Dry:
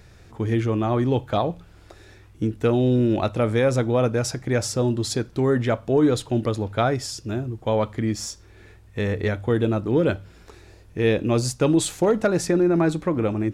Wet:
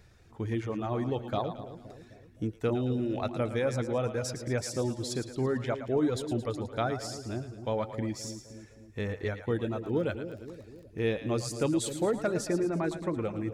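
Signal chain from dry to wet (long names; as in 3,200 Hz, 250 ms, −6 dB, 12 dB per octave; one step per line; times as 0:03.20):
reverb reduction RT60 0.88 s
echo with a time of its own for lows and highs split 560 Hz, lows 260 ms, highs 111 ms, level −10 dB
0:09.84–0:11.06: surface crackle 19 per second −37 dBFS
level −8.5 dB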